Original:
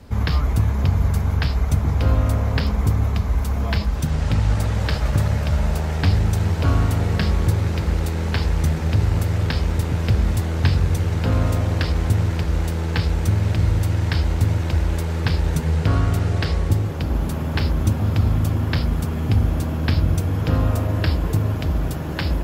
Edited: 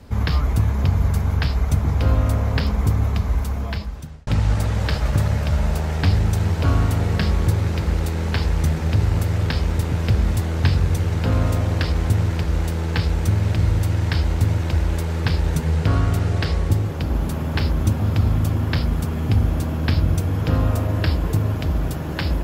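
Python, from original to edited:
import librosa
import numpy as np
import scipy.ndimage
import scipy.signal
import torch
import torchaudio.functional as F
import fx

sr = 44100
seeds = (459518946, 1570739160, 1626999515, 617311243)

y = fx.edit(x, sr, fx.fade_out_span(start_s=3.32, length_s=0.95), tone=tone)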